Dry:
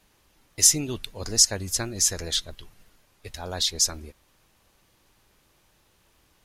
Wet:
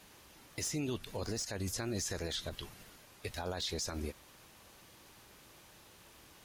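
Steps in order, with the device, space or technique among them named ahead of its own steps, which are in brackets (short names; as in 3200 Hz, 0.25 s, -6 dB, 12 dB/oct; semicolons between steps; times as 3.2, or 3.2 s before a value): podcast mastering chain (HPF 95 Hz 6 dB/oct; de-esser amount 85%; compressor 4:1, threshold -37 dBFS, peak gain reduction 9.5 dB; limiter -34.5 dBFS, peak gain reduction 10 dB; gain +6.5 dB; MP3 112 kbps 44100 Hz)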